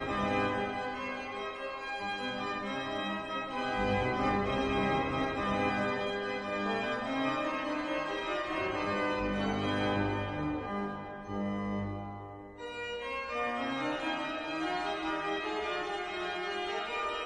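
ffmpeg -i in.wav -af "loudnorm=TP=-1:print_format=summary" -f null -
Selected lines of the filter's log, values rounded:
Input Integrated:    -33.8 LUFS
Input True Peak:     -18.3 dBTP
Input LRA:             4.0 LU
Input Threshold:     -43.8 LUFS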